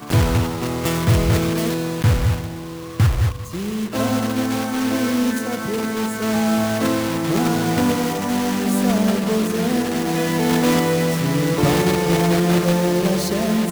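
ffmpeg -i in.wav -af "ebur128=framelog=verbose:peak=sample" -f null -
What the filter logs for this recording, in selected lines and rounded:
Integrated loudness:
  I:         -19.6 LUFS
  Threshold: -29.7 LUFS
Loudness range:
  LRA:         3.5 LU
  Threshold: -39.9 LUFS
  LRA low:   -21.5 LUFS
  LRA high:  -18.0 LUFS
Sample peak:
  Peak:       -6.9 dBFS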